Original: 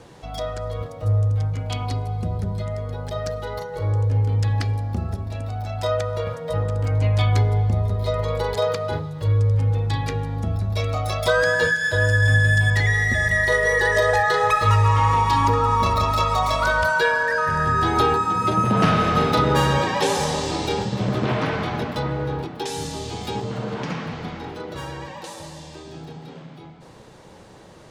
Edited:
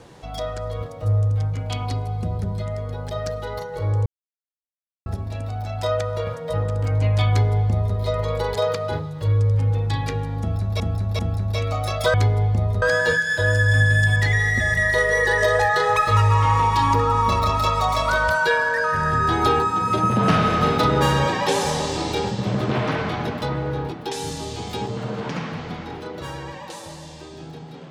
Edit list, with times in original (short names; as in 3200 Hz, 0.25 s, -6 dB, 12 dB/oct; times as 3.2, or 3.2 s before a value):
4.06–5.06 mute
7.29–7.97 copy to 11.36
10.41–10.8 loop, 3 plays